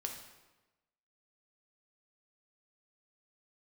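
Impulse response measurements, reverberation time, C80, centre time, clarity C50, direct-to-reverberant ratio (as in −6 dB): 1.1 s, 8.0 dB, 31 ms, 5.5 dB, 2.0 dB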